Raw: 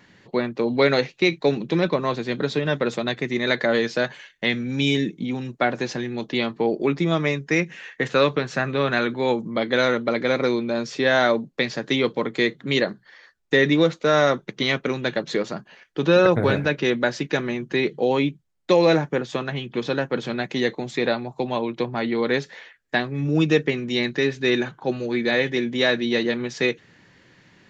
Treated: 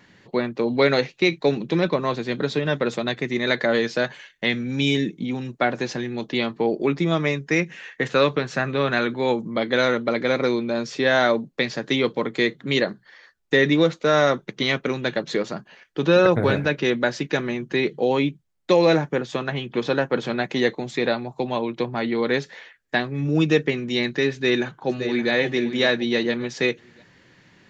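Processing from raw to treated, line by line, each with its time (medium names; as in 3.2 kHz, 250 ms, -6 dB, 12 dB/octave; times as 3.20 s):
19.47–20.70 s: peaking EQ 840 Hz +3.5 dB 2.5 oct
24.32–25.31 s: echo throw 570 ms, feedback 30%, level -9.5 dB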